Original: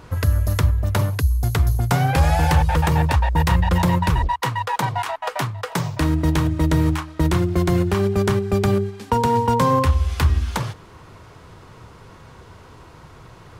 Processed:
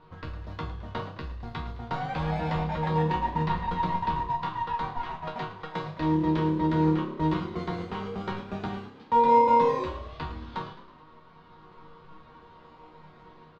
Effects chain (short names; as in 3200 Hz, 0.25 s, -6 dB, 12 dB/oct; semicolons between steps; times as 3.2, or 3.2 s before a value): ten-band EQ 125 Hz -4 dB, 250 Hz +4 dB, 1000 Hz +9 dB, 4000 Hz +10 dB, 8000 Hz -11 dB; AGC gain up to 3.5 dB; in parallel at -7 dB: decimation with a swept rate 41×, swing 60% 0.29 Hz; on the sum: resonator bank D#3 minor, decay 0.34 s; short-mantissa float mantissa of 4-bit; air absorption 190 m; doubler 19 ms -12 dB; on a send: frequency-shifting echo 0.107 s, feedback 57%, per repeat +34 Hz, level -14.5 dB